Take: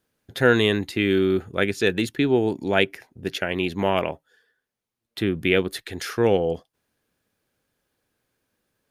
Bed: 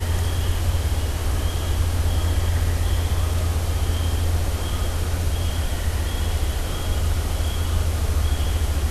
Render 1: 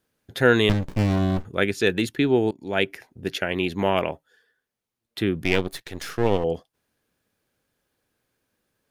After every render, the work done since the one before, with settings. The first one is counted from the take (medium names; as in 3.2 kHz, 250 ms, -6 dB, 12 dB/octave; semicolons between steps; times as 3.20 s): 0.69–1.45 s: sliding maximum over 65 samples; 2.51–2.93 s: fade in, from -21 dB; 5.44–6.44 s: partial rectifier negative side -12 dB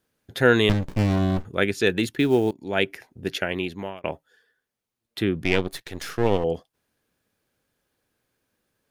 2.03–2.54 s: short-mantissa float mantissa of 4-bit; 3.43–4.04 s: fade out; 5.25–5.73 s: treble shelf 11 kHz -9.5 dB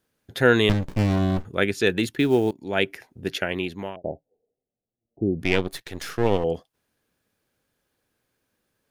3.96–5.40 s: steep low-pass 770 Hz 72 dB/octave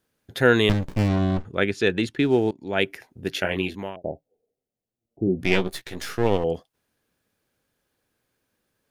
1.08–2.79 s: distance through air 58 m; 3.35–3.76 s: doubling 21 ms -4 dB; 5.25–6.18 s: doubling 16 ms -5.5 dB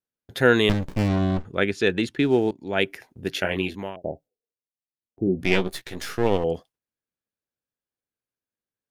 gate with hold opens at -45 dBFS; dynamic bell 110 Hz, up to -4 dB, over -44 dBFS, Q 6.7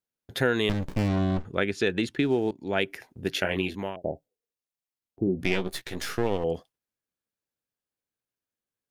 compression 3:1, threshold -22 dBFS, peak gain reduction 8.5 dB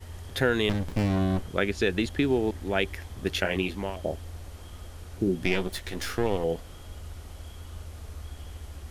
add bed -19 dB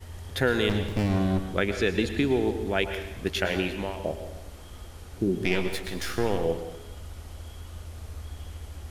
plate-style reverb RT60 0.92 s, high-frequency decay 1×, pre-delay 95 ms, DRR 8 dB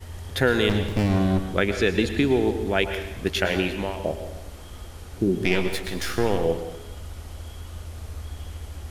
trim +3.5 dB